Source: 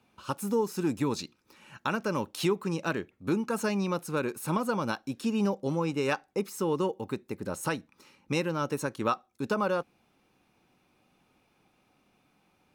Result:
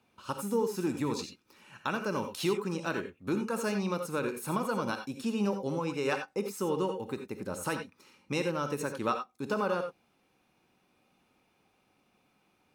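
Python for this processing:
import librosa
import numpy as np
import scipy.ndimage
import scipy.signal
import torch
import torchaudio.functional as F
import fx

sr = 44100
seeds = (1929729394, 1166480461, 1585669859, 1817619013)

y = fx.low_shelf(x, sr, hz=120.0, db=-5.0)
y = fx.rev_gated(y, sr, seeds[0], gate_ms=110, shape='rising', drr_db=6.0)
y = y * librosa.db_to_amplitude(-2.5)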